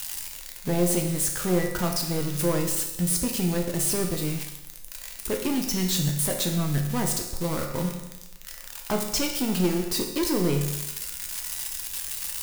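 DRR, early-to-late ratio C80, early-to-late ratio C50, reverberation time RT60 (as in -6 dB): 2.0 dB, 8.0 dB, 6.0 dB, 0.95 s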